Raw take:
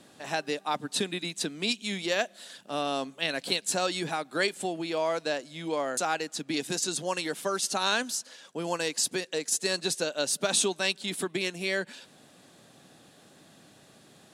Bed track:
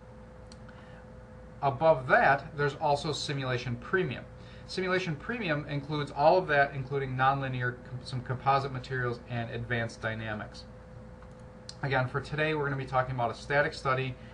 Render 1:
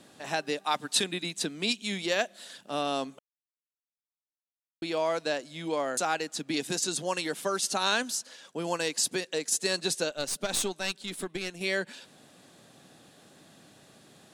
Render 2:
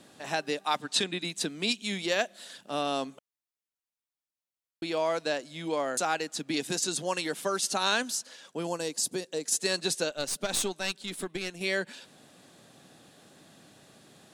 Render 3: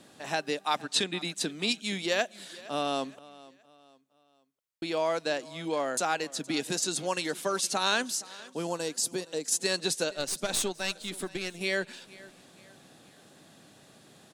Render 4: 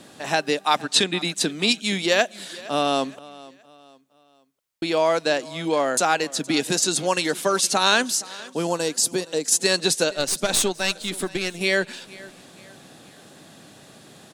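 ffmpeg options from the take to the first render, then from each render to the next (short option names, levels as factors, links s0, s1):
-filter_complex "[0:a]asettb=1/sr,asplit=3[s0][s1][s2];[s0]atrim=end=0.644[s3];[s1]atrim=start=0.64:end=1.04,asetpts=PTS-STARTPTS,afade=t=in:d=0.004:c=qsin,afade=t=out:st=0.396:d=0.004:c=qsin,tiltshelf=f=710:g=-5[s4];[s2]atrim=start=1.036[s5];[s3][s4]acrossfade=d=0.004:c1=hsin:c2=qsin[s6];[s6][s5]acrossfade=d=0.004:c1=qsin:c2=hsin,asettb=1/sr,asplit=3[s7][s8][s9];[s7]atrim=end=10.104[s10];[s8]atrim=start=10.1:end=11.61,asetpts=PTS-STARTPTS,afade=t=in:d=0.004:c=qsin,afade=t=out:st=1.506:d=0.004:c=qsin,aeval=exprs='(tanh(7.94*val(0)+0.75)-tanh(0.75))/7.94':c=same[s11];[s9]atrim=start=11.606[s12];[s10][s11]acrossfade=d=0.004:c1=hsin:c2=qsin[s13];[s13][s12]acrossfade=d=0.004:c1=qsin:c2=hsin,asplit=3[s14][s15][s16];[s14]atrim=end=3.19,asetpts=PTS-STARTPTS,afade=t=out:st=3.186:d=0.004:c=hsin[s17];[s15]atrim=start=3.19:end=4.82,asetpts=PTS-STARTPTS,volume=0[s18];[s16]atrim=start=4.82,asetpts=PTS-STARTPTS,afade=t=in:d=0.004:c=hsin[s19];[s17][s18][s19]concat=n=3:v=0:a=1"
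-filter_complex "[0:a]asettb=1/sr,asplit=3[s0][s1][s2];[s0]atrim=end=0.824[s3];[s1]atrim=start=0.82:end=1.22,asetpts=PTS-STARTPTS,afade=t=in:d=0.004:c=qsin,afade=t=out:st=0.396:d=0.004:c=qsin,lowpass=7400[s4];[s2]atrim=start=1.216[s5];[s3][s4]acrossfade=d=0.004:c1=hsin:c2=qsin[s6];[s6][s5]acrossfade=d=0.004:c1=qsin:c2=hsin,asettb=1/sr,asplit=3[s7][s8][s9];[s7]atrim=end=8.674[s10];[s8]atrim=start=8.67:end=9.45,asetpts=PTS-STARTPTS,afade=t=in:d=0.004:c=qsin,afade=t=out:st=0.776:d=0.004:c=qsin,equalizer=f=2100:w=0.64:g=-9.5[s11];[s9]atrim=start=9.446[s12];[s10][s11]acrossfade=d=0.004:c1=hsin:c2=qsin[s13];[s13][s12]acrossfade=d=0.004:c1=qsin:c2=hsin"
-af "aecho=1:1:468|936|1404:0.0944|0.0368|0.0144"
-af "volume=2.66"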